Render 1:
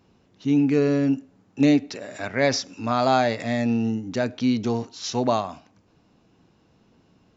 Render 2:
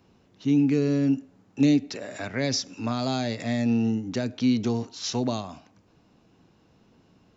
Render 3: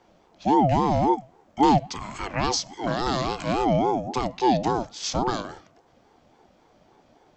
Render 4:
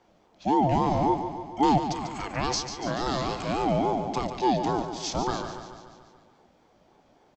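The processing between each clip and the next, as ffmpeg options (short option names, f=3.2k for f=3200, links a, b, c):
-filter_complex "[0:a]acrossover=split=350|3000[a][b][c];[b]acompressor=threshold=-32dB:ratio=6[d];[a][d][c]amix=inputs=3:normalize=0"
-af "aeval=exprs='val(0)*sin(2*PI*510*n/s+510*0.25/3.6*sin(2*PI*3.6*n/s))':c=same,volume=4.5dB"
-af "aecho=1:1:144|288|432|576|720|864|1008:0.335|0.201|0.121|0.0724|0.0434|0.026|0.0156,volume=-3.5dB"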